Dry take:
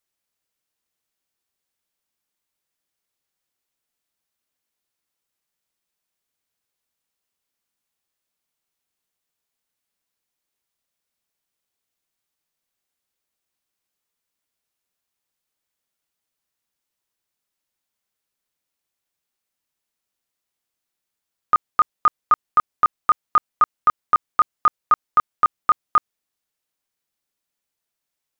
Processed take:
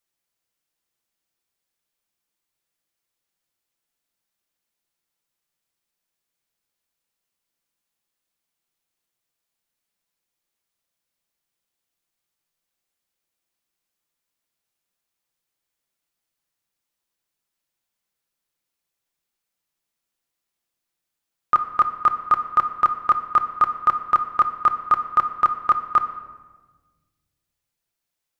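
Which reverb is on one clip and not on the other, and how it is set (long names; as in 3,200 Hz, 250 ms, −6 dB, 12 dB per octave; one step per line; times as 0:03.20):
rectangular room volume 1,100 cubic metres, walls mixed, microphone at 0.78 metres
level −1 dB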